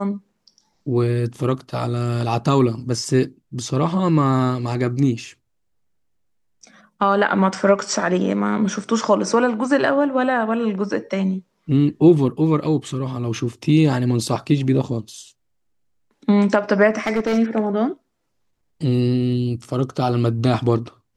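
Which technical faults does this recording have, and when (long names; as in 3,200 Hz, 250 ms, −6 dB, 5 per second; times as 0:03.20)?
0:16.90–0:17.38: clipping −15 dBFS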